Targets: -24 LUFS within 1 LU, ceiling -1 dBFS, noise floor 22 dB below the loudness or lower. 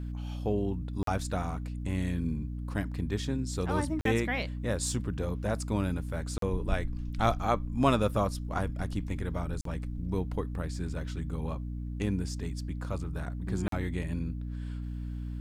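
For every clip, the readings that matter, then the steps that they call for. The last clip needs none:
dropouts 5; longest dropout 43 ms; hum 60 Hz; harmonics up to 300 Hz; hum level -34 dBFS; loudness -33.0 LUFS; peak -11.5 dBFS; loudness target -24.0 LUFS
-> interpolate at 1.03/4.01/6.38/9.61/13.68, 43 ms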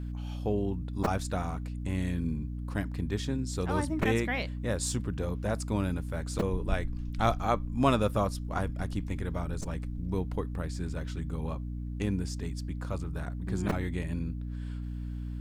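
dropouts 0; hum 60 Hz; harmonics up to 300 Hz; hum level -34 dBFS
-> notches 60/120/180/240/300 Hz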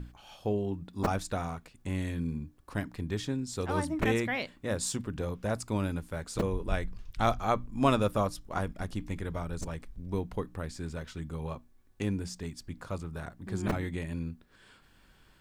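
hum none; loudness -34.0 LUFS; peak -11.5 dBFS; loudness target -24.0 LUFS
-> gain +10 dB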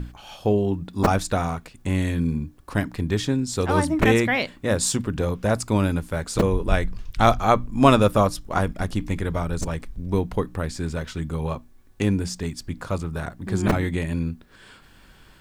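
loudness -24.0 LUFS; peak -1.5 dBFS; noise floor -51 dBFS

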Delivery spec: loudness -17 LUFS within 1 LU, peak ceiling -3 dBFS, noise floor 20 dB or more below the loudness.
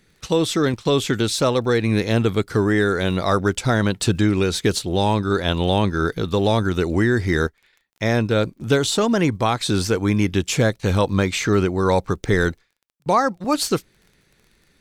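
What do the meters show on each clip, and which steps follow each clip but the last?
ticks 28/s; loudness -20.5 LUFS; peak -4.5 dBFS; loudness target -17.0 LUFS
-> de-click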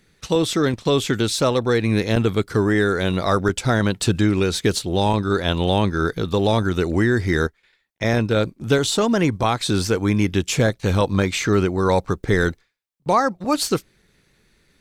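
ticks 0.20/s; loudness -20.5 LUFS; peak -4.5 dBFS; loudness target -17.0 LUFS
-> gain +3.5 dB; limiter -3 dBFS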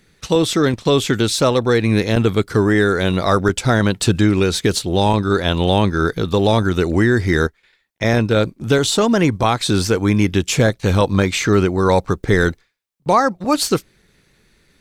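loudness -17.0 LUFS; peak -3.0 dBFS; noise floor -61 dBFS

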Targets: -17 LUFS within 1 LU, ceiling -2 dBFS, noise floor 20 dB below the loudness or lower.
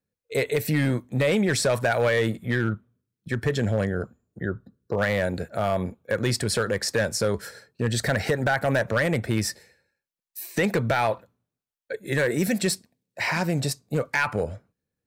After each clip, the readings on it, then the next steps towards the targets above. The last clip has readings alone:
clipped 0.9%; flat tops at -15.5 dBFS; loudness -25.5 LUFS; peak -15.5 dBFS; loudness target -17.0 LUFS
-> clip repair -15.5 dBFS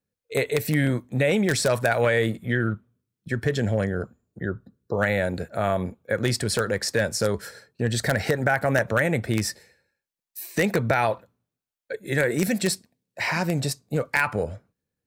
clipped 0.0%; loudness -25.0 LUFS; peak -6.5 dBFS; loudness target -17.0 LUFS
-> gain +8 dB; limiter -2 dBFS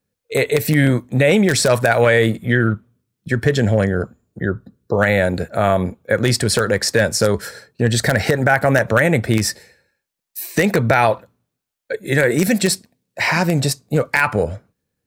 loudness -17.5 LUFS; peak -2.0 dBFS; noise floor -79 dBFS

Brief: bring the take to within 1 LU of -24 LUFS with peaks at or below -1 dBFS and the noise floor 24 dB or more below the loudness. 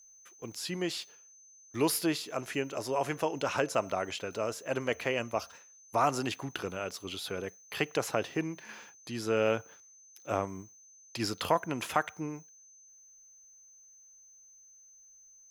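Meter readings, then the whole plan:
steady tone 6200 Hz; tone level -55 dBFS; loudness -33.5 LUFS; peak -11.0 dBFS; loudness target -24.0 LUFS
-> notch 6200 Hz, Q 30; gain +9.5 dB

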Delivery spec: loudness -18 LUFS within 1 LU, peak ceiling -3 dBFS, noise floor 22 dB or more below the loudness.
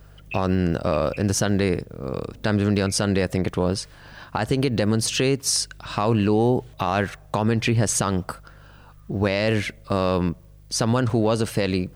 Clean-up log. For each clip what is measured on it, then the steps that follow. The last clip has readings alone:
hum 50 Hz; harmonics up to 150 Hz; hum level -47 dBFS; loudness -23.0 LUFS; peak -10.5 dBFS; loudness target -18.0 LUFS
-> de-hum 50 Hz, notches 3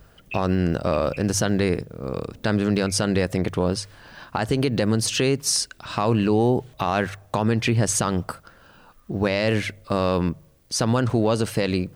hum none; loudness -23.0 LUFS; peak -9.5 dBFS; loudness target -18.0 LUFS
-> gain +5 dB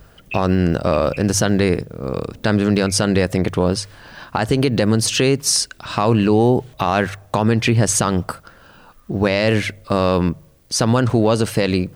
loudness -18.0 LUFS; peak -4.5 dBFS; noise floor -50 dBFS

